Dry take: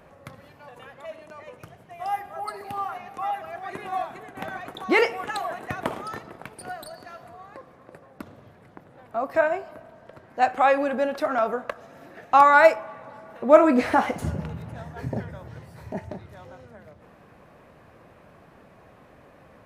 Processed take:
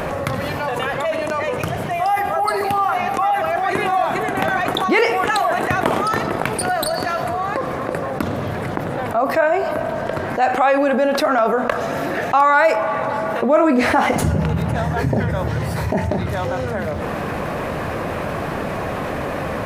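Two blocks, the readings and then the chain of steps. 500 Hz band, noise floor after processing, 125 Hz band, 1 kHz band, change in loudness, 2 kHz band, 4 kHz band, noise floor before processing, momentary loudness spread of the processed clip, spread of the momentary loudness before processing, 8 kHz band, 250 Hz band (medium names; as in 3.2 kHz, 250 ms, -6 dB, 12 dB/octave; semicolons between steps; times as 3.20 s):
+6.0 dB, -25 dBFS, +15.0 dB, +6.5 dB, +4.0 dB, +7.0 dB, +11.5 dB, -53 dBFS, 9 LU, 24 LU, no reading, +8.5 dB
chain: hum notches 60/120/180/240 Hz; level flattener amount 70%; trim -3 dB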